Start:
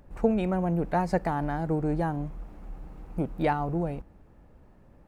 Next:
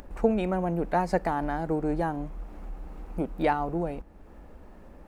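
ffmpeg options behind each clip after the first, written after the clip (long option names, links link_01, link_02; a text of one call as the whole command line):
ffmpeg -i in.wav -filter_complex "[0:a]asplit=2[link_01][link_02];[link_02]acompressor=mode=upward:threshold=-31dB:ratio=2.5,volume=-1dB[link_03];[link_01][link_03]amix=inputs=2:normalize=0,equalizer=frequency=120:width=2:gain=-14,volume=-4dB" out.wav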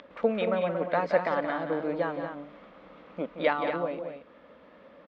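ffmpeg -i in.wav -af "highpass=270,equalizer=frequency=370:width_type=q:width=4:gain=-9,equalizer=frequency=550:width_type=q:width=4:gain=7,equalizer=frequency=800:width_type=q:width=4:gain=-9,equalizer=frequency=1200:width_type=q:width=4:gain=5,equalizer=frequency=2100:width_type=q:width=4:gain=5,equalizer=frequency=3400:width_type=q:width=4:gain=9,lowpass=frequency=4400:width=0.5412,lowpass=frequency=4400:width=1.3066,aecho=1:1:174.9|230.3:0.355|0.398" out.wav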